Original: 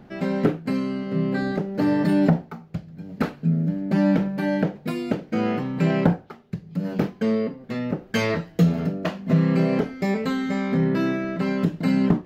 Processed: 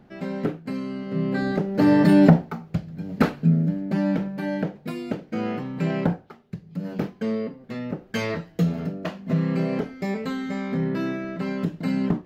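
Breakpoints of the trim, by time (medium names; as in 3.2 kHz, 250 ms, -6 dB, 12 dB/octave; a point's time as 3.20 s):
0.74 s -5.5 dB
1.96 s +4.5 dB
3.37 s +4.5 dB
4.02 s -4 dB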